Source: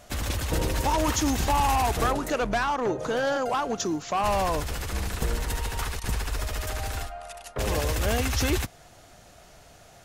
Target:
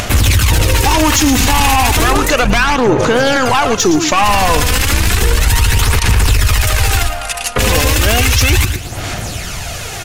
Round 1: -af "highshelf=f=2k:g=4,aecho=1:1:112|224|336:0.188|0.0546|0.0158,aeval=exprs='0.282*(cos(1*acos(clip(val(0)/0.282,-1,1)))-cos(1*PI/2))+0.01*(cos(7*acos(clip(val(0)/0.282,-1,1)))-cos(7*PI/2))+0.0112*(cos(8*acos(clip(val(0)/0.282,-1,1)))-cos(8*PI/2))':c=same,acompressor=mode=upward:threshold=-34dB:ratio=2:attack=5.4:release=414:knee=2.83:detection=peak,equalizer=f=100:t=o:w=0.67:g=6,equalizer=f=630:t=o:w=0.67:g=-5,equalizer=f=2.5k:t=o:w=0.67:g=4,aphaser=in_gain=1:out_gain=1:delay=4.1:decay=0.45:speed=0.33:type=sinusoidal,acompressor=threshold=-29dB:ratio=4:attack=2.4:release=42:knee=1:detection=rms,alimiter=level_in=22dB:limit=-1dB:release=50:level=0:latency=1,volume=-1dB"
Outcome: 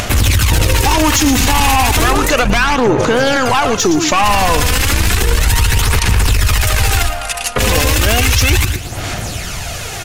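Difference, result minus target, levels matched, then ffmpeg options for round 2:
compressor: peak gain reduction +13.5 dB
-af "highshelf=f=2k:g=4,aecho=1:1:112|224|336:0.188|0.0546|0.0158,aeval=exprs='0.282*(cos(1*acos(clip(val(0)/0.282,-1,1)))-cos(1*PI/2))+0.01*(cos(7*acos(clip(val(0)/0.282,-1,1)))-cos(7*PI/2))+0.0112*(cos(8*acos(clip(val(0)/0.282,-1,1)))-cos(8*PI/2))':c=same,acompressor=mode=upward:threshold=-34dB:ratio=2:attack=5.4:release=414:knee=2.83:detection=peak,equalizer=f=100:t=o:w=0.67:g=6,equalizer=f=630:t=o:w=0.67:g=-5,equalizer=f=2.5k:t=o:w=0.67:g=4,aphaser=in_gain=1:out_gain=1:delay=4.1:decay=0.45:speed=0.33:type=sinusoidal,alimiter=level_in=22dB:limit=-1dB:release=50:level=0:latency=1,volume=-1dB"

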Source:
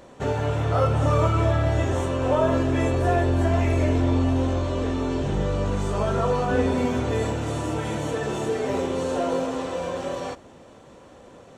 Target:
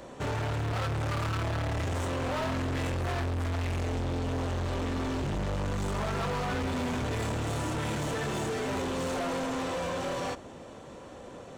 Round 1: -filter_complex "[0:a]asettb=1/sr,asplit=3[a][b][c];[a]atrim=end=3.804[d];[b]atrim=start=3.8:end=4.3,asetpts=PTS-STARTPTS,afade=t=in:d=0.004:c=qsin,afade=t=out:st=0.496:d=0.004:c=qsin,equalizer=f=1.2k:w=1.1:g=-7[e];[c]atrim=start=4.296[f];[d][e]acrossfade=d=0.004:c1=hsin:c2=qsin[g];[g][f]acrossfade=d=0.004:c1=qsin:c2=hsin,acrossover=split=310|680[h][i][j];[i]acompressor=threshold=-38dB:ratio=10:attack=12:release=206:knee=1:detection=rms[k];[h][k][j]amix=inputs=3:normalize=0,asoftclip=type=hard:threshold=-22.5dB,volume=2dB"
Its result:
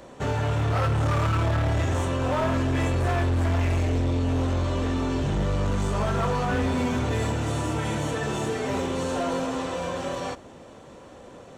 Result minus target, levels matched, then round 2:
hard clip: distortion -6 dB
-filter_complex "[0:a]asettb=1/sr,asplit=3[a][b][c];[a]atrim=end=3.804[d];[b]atrim=start=3.8:end=4.3,asetpts=PTS-STARTPTS,afade=t=in:d=0.004:c=qsin,afade=t=out:st=0.496:d=0.004:c=qsin,equalizer=f=1.2k:w=1.1:g=-7[e];[c]atrim=start=4.296[f];[d][e]acrossfade=d=0.004:c1=hsin:c2=qsin[g];[g][f]acrossfade=d=0.004:c1=qsin:c2=hsin,acrossover=split=310|680[h][i][j];[i]acompressor=threshold=-38dB:ratio=10:attack=12:release=206:knee=1:detection=rms[k];[h][k][j]amix=inputs=3:normalize=0,asoftclip=type=hard:threshold=-31.5dB,volume=2dB"

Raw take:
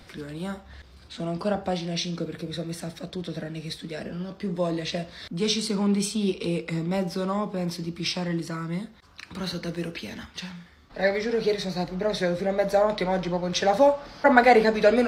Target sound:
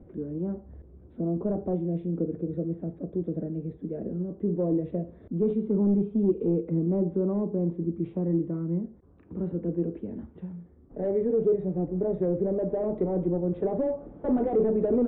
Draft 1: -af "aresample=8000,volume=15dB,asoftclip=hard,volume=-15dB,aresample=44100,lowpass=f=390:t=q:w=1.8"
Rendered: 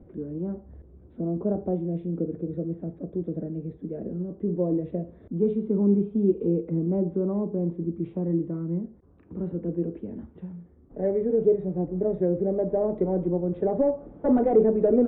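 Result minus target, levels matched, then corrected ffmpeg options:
overloaded stage: distortion -6 dB
-af "aresample=8000,volume=22dB,asoftclip=hard,volume=-22dB,aresample=44100,lowpass=f=390:t=q:w=1.8"

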